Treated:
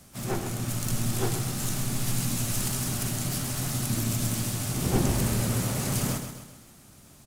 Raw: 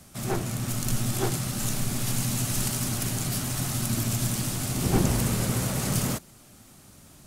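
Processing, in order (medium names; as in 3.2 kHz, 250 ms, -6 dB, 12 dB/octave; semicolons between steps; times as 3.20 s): de-hum 158 Hz, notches 29; harmony voices +5 st -13 dB; on a send: feedback delay 131 ms, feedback 48%, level -8.5 dB; on the sum: trim -2 dB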